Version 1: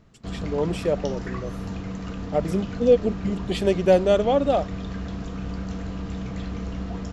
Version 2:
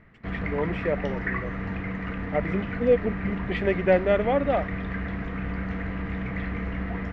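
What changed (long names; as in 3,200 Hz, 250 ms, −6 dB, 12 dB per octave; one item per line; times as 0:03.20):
speech −4.0 dB
master: add low-pass with resonance 2,000 Hz, resonance Q 5.4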